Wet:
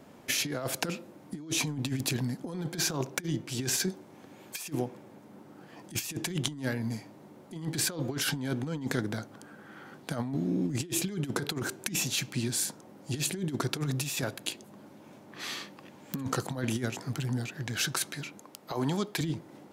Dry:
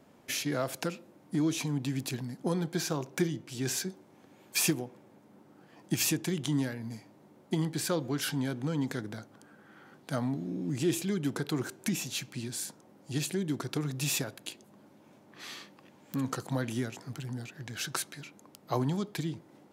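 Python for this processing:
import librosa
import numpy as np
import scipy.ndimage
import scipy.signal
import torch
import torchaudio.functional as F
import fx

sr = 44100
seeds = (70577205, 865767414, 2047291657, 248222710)

y = fx.low_shelf(x, sr, hz=200.0, db=-12.0, at=(18.41, 19.21))
y = fx.over_compress(y, sr, threshold_db=-34.0, ratio=-0.5)
y = F.gain(torch.from_numpy(y), 3.5).numpy()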